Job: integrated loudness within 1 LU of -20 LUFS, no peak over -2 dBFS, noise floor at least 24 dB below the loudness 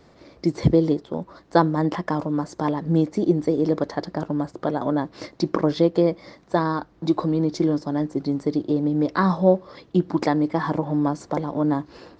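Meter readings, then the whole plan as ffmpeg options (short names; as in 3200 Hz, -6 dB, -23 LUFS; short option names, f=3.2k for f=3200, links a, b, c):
loudness -23.0 LUFS; peak -1.0 dBFS; loudness target -20.0 LUFS
-> -af "volume=3dB,alimiter=limit=-2dB:level=0:latency=1"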